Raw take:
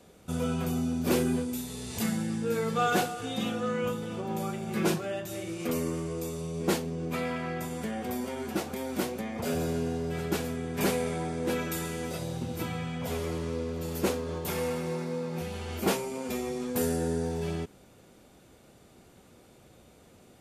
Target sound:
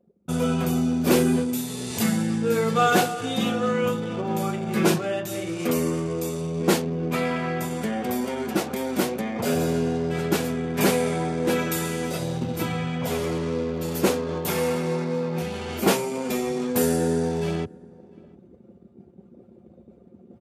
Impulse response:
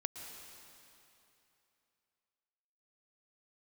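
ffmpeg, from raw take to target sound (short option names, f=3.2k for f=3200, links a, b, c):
-filter_complex "[0:a]anlmdn=0.0631,highpass=f=100:w=0.5412,highpass=f=100:w=1.3066,areverse,acompressor=mode=upward:threshold=-40dB:ratio=2.5,areverse,asplit=2[a][b];[b]adelay=699.7,volume=-26dB,highshelf=f=4k:g=-15.7[c];[a][c]amix=inputs=2:normalize=0,volume=7dB"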